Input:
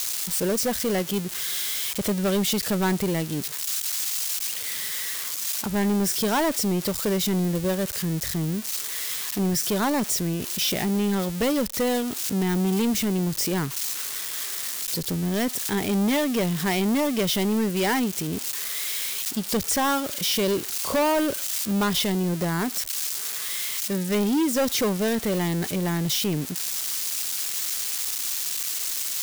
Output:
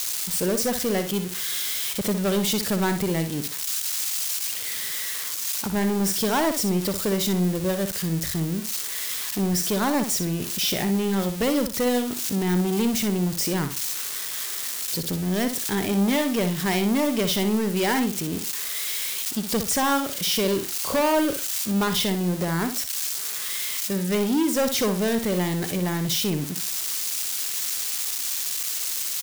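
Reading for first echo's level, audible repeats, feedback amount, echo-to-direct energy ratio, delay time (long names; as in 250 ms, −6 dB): −9.0 dB, 2, 22%, −9.0 dB, 61 ms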